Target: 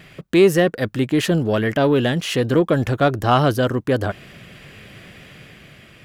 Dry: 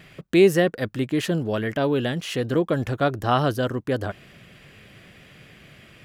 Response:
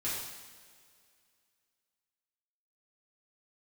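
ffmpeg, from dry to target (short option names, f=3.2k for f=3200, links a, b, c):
-filter_complex "[0:a]dynaudnorm=f=130:g=11:m=3dB,asplit=2[a][b];[b]asoftclip=type=tanh:threshold=-17dB,volume=-5.5dB[c];[a][c]amix=inputs=2:normalize=0"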